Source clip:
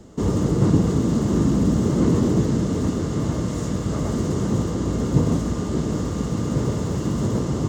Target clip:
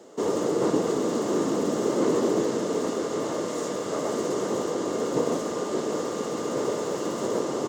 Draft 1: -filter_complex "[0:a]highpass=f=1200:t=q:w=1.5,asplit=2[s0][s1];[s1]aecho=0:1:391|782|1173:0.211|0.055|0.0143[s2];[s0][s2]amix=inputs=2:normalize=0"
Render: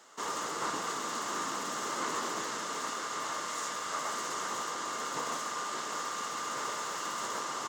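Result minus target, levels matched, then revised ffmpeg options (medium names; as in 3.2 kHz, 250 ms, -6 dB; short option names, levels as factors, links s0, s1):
500 Hz band -10.0 dB
-filter_complex "[0:a]highpass=f=460:t=q:w=1.5,asplit=2[s0][s1];[s1]aecho=0:1:391|782|1173:0.211|0.055|0.0143[s2];[s0][s2]amix=inputs=2:normalize=0"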